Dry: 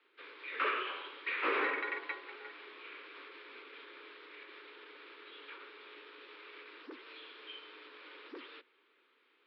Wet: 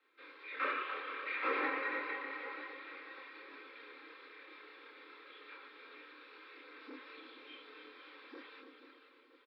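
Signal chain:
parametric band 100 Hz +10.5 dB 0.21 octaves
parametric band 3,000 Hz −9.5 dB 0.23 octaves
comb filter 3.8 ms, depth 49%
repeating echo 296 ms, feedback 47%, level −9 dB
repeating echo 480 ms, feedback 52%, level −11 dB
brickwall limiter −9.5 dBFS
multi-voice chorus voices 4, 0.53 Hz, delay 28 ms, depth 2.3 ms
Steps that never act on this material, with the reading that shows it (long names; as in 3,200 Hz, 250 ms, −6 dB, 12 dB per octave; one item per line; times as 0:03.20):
parametric band 100 Hz: nothing at its input below 230 Hz
brickwall limiter −9.5 dBFS: peak of its input −19.0 dBFS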